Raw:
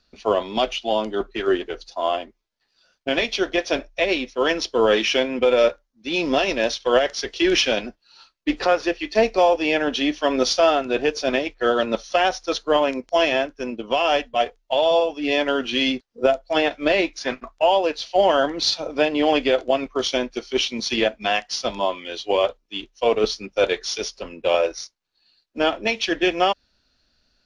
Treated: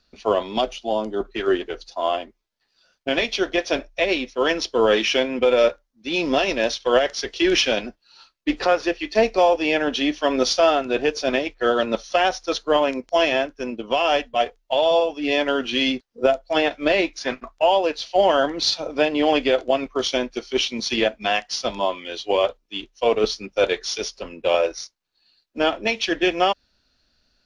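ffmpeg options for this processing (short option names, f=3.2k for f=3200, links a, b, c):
-filter_complex "[0:a]asettb=1/sr,asplit=3[a][b][c];[a]atrim=end=0.614[d];[b]atrim=start=0.61:end=1.25,asetpts=PTS-STARTPTS,afade=t=in:d=0.004:c=qsin,afade=t=out:st=0.636:d=0.004:c=qsin,equalizer=f=2.5k:w=0.74:g=-9[e];[c]atrim=start=1.246[f];[d][e]acrossfade=d=0.004:c1=hsin:c2=qsin[g];[g][f]acrossfade=d=0.004:c1=qsin:c2=hsin"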